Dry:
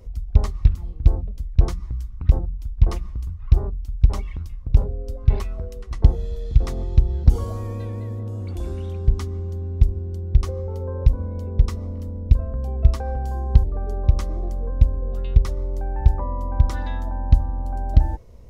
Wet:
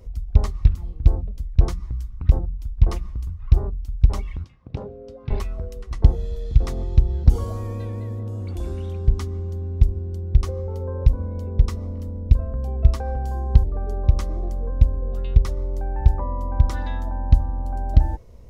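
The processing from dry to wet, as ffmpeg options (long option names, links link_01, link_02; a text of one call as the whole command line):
ffmpeg -i in.wav -filter_complex "[0:a]asettb=1/sr,asplit=3[link_01][link_02][link_03];[link_01]atrim=end=4.444[link_04];[link_02]atrim=start=4.44:end=5.31,asetpts=PTS-STARTPTS,afade=type=in:duration=0.004:curve=qsin,afade=type=out:start_time=0.866:duration=0.004:curve=qsin,highpass=180,lowpass=4100[link_05];[link_03]atrim=start=5.306[link_06];[link_04][link_05]acrossfade=duration=0.004:curve1=hsin:curve2=qsin[link_07];[link_07][link_06]acrossfade=duration=0.004:curve1=qsin:curve2=hsin" out.wav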